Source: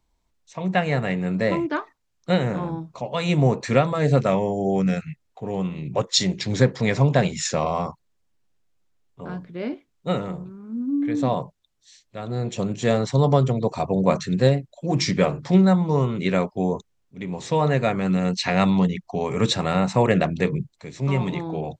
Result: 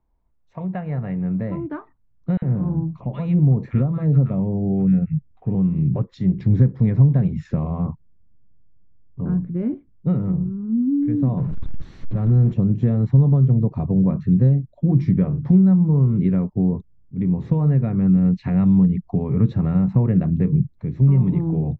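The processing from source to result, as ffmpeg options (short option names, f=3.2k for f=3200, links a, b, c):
-filter_complex "[0:a]asettb=1/sr,asplit=3[a][b][c];[a]atrim=end=2.374[d];[b]atrim=start=2.37:end=5.55,asetpts=PTS-STARTPTS,afade=t=in:d=0.004:c=qsin,afade=t=out:st=3.176:d=0.004:c=qsin,acrossover=split=1200[e][f];[e]adelay=50[g];[g][f]amix=inputs=2:normalize=0,atrim=end_sample=140238[h];[c]atrim=start=5.546[i];[d][h]acrossfade=d=0.004:c1=hsin:c2=qsin[j];[j][i]acrossfade=d=0.004:c1=qsin:c2=hsin,asettb=1/sr,asplit=3[k][l][m];[k]atrim=end=11.374[n];[l]atrim=start=11.37:end=12.54,asetpts=PTS-STARTPTS,afade=t=in:d=0.004:c=qsin,afade=t=out:st=1.166:d=0.004:c=qsin,aeval=exprs='val(0)+0.5*0.0282*sgn(val(0))':c=same[o];[m]atrim=start=12.536[p];[n][o]acrossfade=d=0.004:c1=hsin:c2=qsin[q];[q][p]acrossfade=d=0.004:c1=qsin:c2=hsin,acompressor=threshold=-29dB:ratio=2.5,asubboost=boost=9:cutoff=210,lowpass=1.2k"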